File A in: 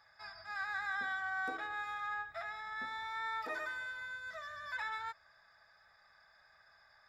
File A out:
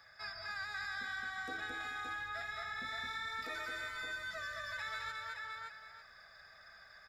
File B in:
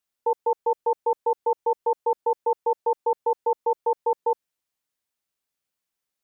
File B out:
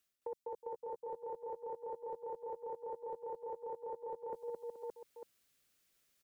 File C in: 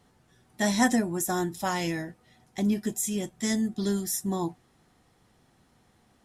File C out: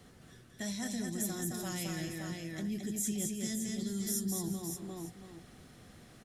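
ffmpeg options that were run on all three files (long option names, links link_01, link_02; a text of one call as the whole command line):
ffmpeg -i in.wav -filter_complex "[0:a]equalizer=frequency=900:width=3.2:gain=-10,areverse,acompressor=threshold=-40dB:ratio=6,areverse,aecho=1:1:217|366|427|569|898:0.668|0.168|0.119|0.447|0.126,acrossover=split=200|3000[link_01][link_02][link_03];[link_02]acompressor=threshold=-48dB:ratio=5[link_04];[link_01][link_04][link_03]amix=inputs=3:normalize=0,volume=6.5dB" out.wav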